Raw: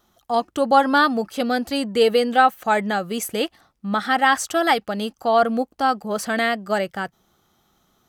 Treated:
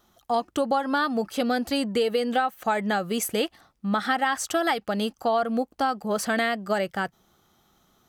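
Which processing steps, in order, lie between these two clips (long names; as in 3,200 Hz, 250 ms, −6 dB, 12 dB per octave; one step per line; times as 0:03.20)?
downward compressor 12 to 1, threshold −20 dBFS, peak gain reduction 11.5 dB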